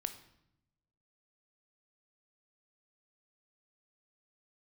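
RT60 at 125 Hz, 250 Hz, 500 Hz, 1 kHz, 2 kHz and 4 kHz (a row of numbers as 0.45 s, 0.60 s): 1.4 s, 1.2 s, 0.85 s, 0.75 s, 0.70 s, 0.65 s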